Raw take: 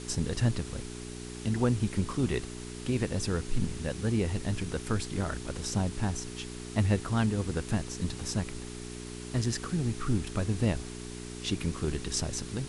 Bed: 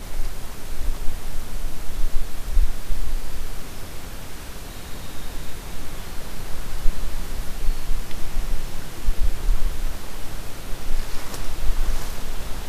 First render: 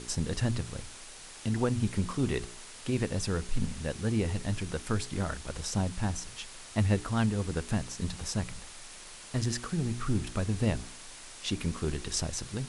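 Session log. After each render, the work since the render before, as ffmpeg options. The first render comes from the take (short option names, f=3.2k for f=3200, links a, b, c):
-af "bandreject=f=60:t=h:w=4,bandreject=f=120:t=h:w=4,bandreject=f=180:t=h:w=4,bandreject=f=240:t=h:w=4,bandreject=f=300:t=h:w=4,bandreject=f=360:t=h:w=4,bandreject=f=420:t=h:w=4"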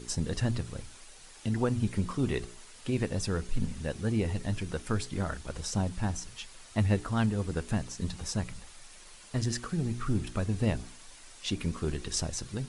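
-af "afftdn=nr=7:nf=-48"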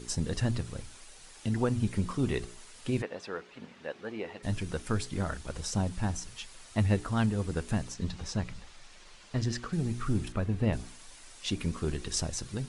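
-filter_complex "[0:a]asplit=3[a][b][c];[a]afade=t=out:st=3.01:d=0.02[d];[b]highpass=450,lowpass=2.9k,afade=t=in:st=3.01:d=0.02,afade=t=out:st=4.42:d=0.02[e];[c]afade=t=in:st=4.42:d=0.02[f];[d][e][f]amix=inputs=3:normalize=0,asettb=1/sr,asplit=3[g][h][i];[g]atrim=end=7.944[j];[h]atrim=start=7.94:end=9.73,asetpts=PTS-STARTPTS,afade=t=in:d=0.004:c=qsin,afade=t=out:st=1.786:d=0.004:c=qsin,lowpass=5.6k[k];[i]atrim=start=9.726[l];[j][k]acrossfade=d=0.004:c1=hsin:c2=qsin[m];[m][l]acrossfade=d=0.004:c1=qsin:c2=hsin,asettb=1/sr,asplit=3[n][o][p];[n]atrim=end=10.324[q];[o]atrim=start=10.32:end=10.73,asetpts=PTS-STARTPTS,afade=t=in:d=0.004:c=qsin,afade=t=out:st=0.406:d=0.004:c=qsin,bass=f=250:g=0,treble=f=4k:g=-12[r];[p]atrim=start=10.726[s];[q][r]acrossfade=d=0.004:c1=hsin:c2=qsin[t];[t][s]acrossfade=d=0.004:c1=qsin:c2=hsin"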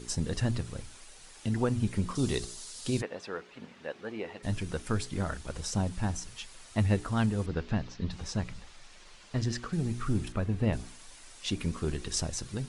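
-filter_complex "[0:a]asettb=1/sr,asplit=3[a][b][c];[a]atrim=end=2.154[d];[b]atrim=start=2.15:end=3.01,asetpts=PTS-STARTPTS,afade=t=in:d=0.004:c=qsin,afade=t=out:st=0.856:d=0.004:c=qsin,highshelf=f=3.3k:t=q:w=1.5:g=8.5[e];[c]atrim=start=3.006[f];[d][e]acrossfade=d=0.004:c1=hsin:c2=qsin[g];[g][f]acrossfade=d=0.004:c1=qsin:c2=hsin,asettb=1/sr,asplit=3[h][i][j];[h]atrim=end=7.464[k];[i]atrim=start=7.46:end=8.11,asetpts=PTS-STARTPTS,afade=t=in:d=0.004:c=qsin,afade=t=out:st=0.646:d=0.004:c=qsin,lowpass=f=4.8k:w=0.5412,lowpass=f=4.8k:w=1.3066[l];[j]atrim=start=8.106[m];[k][l]acrossfade=d=0.004:c1=hsin:c2=qsin[n];[n][m]acrossfade=d=0.004:c1=qsin:c2=hsin"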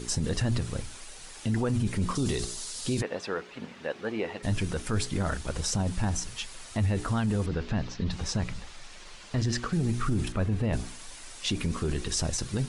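-af "acontrast=64,alimiter=limit=-19.5dB:level=0:latency=1:release=20"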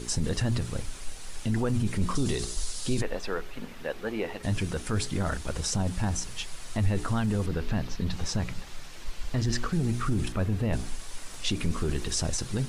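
-filter_complex "[1:a]volume=-16dB[a];[0:a][a]amix=inputs=2:normalize=0"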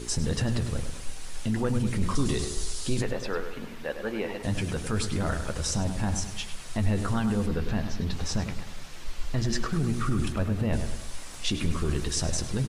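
-filter_complex "[0:a]asplit=2[a][b];[b]adelay=14,volume=-12dB[c];[a][c]amix=inputs=2:normalize=0,asplit=2[d][e];[e]adelay=102,lowpass=f=3.2k:p=1,volume=-8dB,asplit=2[f][g];[g]adelay=102,lowpass=f=3.2k:p=1,volume=0.48,asplit=2[h][i];[i]adelay=102,lowpass=f=3.2k:p=1,volume=0.48,asplit=2[j][k];[k]adelay=102,lowpass=f=3.2k:p=1,volume=0.48,asplit=2[l][m];[m]adelay=102,lowpass=f=3.2k:p=1,volume=0.48,asplit=2[n][o];[o]adelay=102,lowpass=f=3.2k:p=1,volume=0.48[p];[f][h][j][l][n][p]amix=inputs=6:normalize=0[q];[d][q]amix=inputs=2:normalize=0"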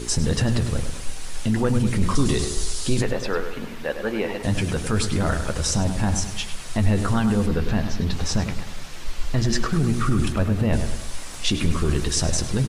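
-af "volume=6dB"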